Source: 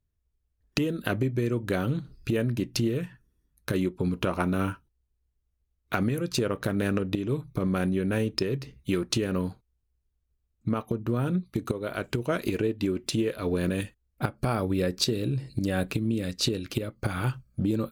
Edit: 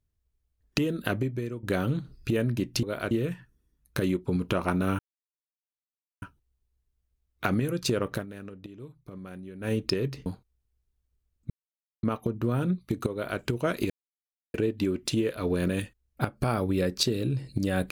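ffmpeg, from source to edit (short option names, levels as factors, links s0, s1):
-filter_complex "[0:a]asplit=10[s0][s1][s2][s3][s4][s5][s6][s7][s8][s9];[s0]atrim=end=1.63,asetpts=PTS-STARTPTS,afade=t=out:st=1.06:d=0.57:silence=0.251189[s10];[s1]atrim=start=1.63:end=2.832,asetpts=PTS-STARTPTS,afade=t=in:d=0.004:c=hsin:silence=0.251189[s11];[s2]atrim=start=11.768:end=12.052[s12];[s3]atrim=start=2.828:end=4.71,asetpts=PTS-STARTPTS,afade=t=out:st=1.878:d=0.004:c=hsin,apad=pad_dur=1.23[s13];[s4]atrim=start=4.71:end=6.75,asetpts=PTS-STARTPTS,afade=t=in:d=0.004:c=hsin,afade=t=out:st=1.91:d=0.13:silence=0.16788[s14];[s5]atrim=start=6.75:end=8.09,asetpts=PTS-STARTPTS,volume=0.168[s15];[s6]atrim=start=8.09:end=8.752,asetpts=PTS-STARTPTS,afade=t=in:d=0.13:silence=0.16788[s16];[s7]atrim=start=9.438:end=10.68,asetpts=PTS-STARTPTS,afade=t=out:st=1.238:d=0.004:c=hsin,apad=pad_dur=0.53[s17];[s8]atrim=start=10.68:end=12.55,asetpts=PTS-STARTPTS,afade=t=in:d=0.004:c=hsin,afade=t=out:st=1.866:d=0.004:c=hsin,apad=pad_dur=0.64[s18];[s9]atrim=start=12.55,asetpts=PTS-STARTPTS,afade=t=in:d=0.004:c=hsin[s19];[s10][s11]concat=n=2:v=0:a=1[s20];[s20][s12]acrossfade=d=0.004:c1=hsin:c2=hsin[s21];[s13][s14][s15][s16]concat=n=4:v=0:a=1[s22];[s21][s22]acrossfade=d=0.004:c1=hsin:c2=hsin[s23];[s17][s18][s19]concat=n=3:v=0:a=1[s24];[s23][s24]acrossfade=d=0.004:c1=hsin:c2=hsin"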